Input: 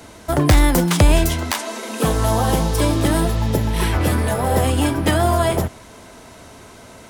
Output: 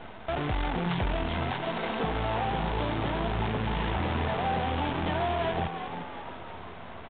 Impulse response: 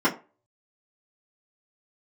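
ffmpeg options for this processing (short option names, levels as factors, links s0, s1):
-filter_complex "[0:a]equalizer=f=780:w=3.1:g=10,acompressor=threshold=0.0501:ratio=5,aresample=16000,asoftclip=type=tanh:threshold=0.0473,aresample=44100,acrusher=bits=6:dc=4:mix=0:aa=0.000001,asplit=8[s0][s1][s2][s3][s4][s5][s6][s7];[s1]adelay=351,afreqshift=87,volume=0.376[s8];[s2]adelay=702,afreqshift=174,volume=0.207[s9];[s3]adelay=1053,afreqshift=261,volume=0.114[s10];[s4]adelay=1404,afreqshift=348,volume=0.0624[s11];[s5]adelay=1755,afreqshift=435,volume=0.0343[s12];[s6]adelay=2106,afreqshift=522,volume=0.0188[s13];[s7]adelay=2457,afreqshift=609,volume=0.0104[s14];[s0][s8][s9][s10][s11][s12][s13][s14]amix=inputs=8:normalize=0,asplit=2[s15][s16];[1:a]atrim=start_sample=2205[s17];[s16][s17]afir=irnorm=-1:irlink=0,volume=0.0251[s18];[s15][s18]amix=inputs=2:normalize=0,aresample=8000,aresample=44100"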